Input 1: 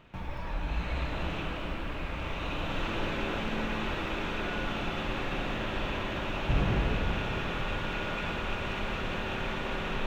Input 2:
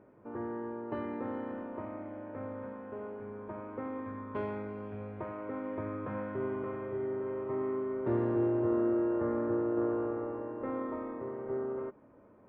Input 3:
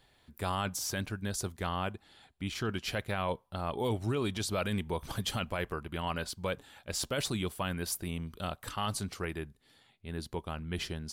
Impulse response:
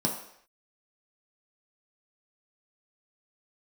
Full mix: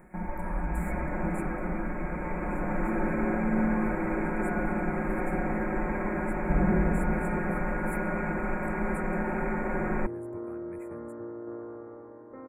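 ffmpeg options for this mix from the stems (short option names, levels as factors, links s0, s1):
-filter_complex "[0:a]highshelf=f=5100:g=-5.5,aecho=1:1:5.5:0.65,volume=0.841,asplit=2[s0][s1];[s1]volume=0.224[s2];[1:a]adelay=1700,volume=0.376[s3];[2:a]acompressor=mode=upward:threshold=0.0158:ratio=2.5,volume=0.2[s4];[3:a]atrim=start_sample=2205[s5];[s2][s5]afir=irnorm=-1:irlink=0[s6];[s0][s3][s4][s6]amix=inputs=4:normalize=0,asuperstop=centerf=4200:order=20:qfactor=0.86"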